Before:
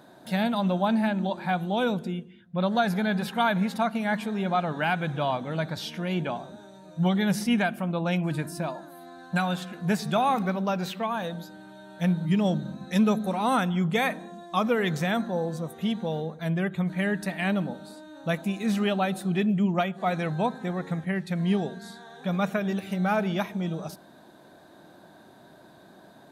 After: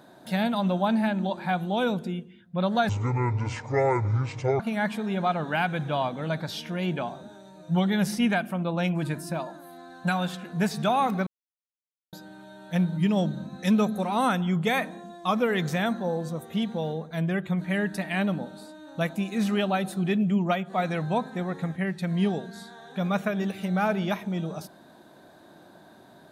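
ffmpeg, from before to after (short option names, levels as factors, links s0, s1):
-filter_complex "[0:a]asplit=5[s0][s1][s2][s3][s4];[s0]atrim=end=2.894[s5];[s1]atrim=start=2.89:end=3.88,asetpts=PTS-STARTPTS,asetrate=25578,aresample=44100,atrim=end_sample=75274,asetpts=PTS-STARTPTS[s6];[s2]atrim=start=3.876:end=10.55,asetpts=PTS-STARTPTS,afade=t=out:st=6.67:d=0.004:c=hsin[s7];[s3]atrim=start=10.55:end=11.41,asetpts=PTS-STARTPTS,volume=0[s8];[s4]atrim=start=11.41,asetpts=PTS-STARTPTS,afade=t=in:d=0.004:c=hsin[s9];[s5][s6]acrossfade=d=0.004:c1=hsin:c2=hsin[s10];[s7][s8][s9]concat=n=3:v=0:a=1[s11];[s10][s11]acrossfade=d=0.004:c1=hsin:c2=hsin"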